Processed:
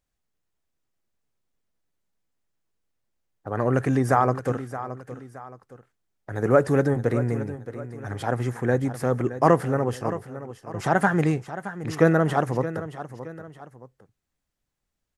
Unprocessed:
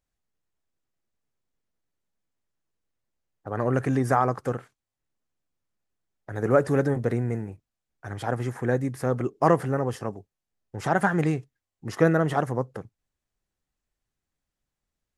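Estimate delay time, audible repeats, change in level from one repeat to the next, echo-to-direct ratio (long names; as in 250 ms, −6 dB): 621 ms, 2, −8.0 dB, −12.5 dB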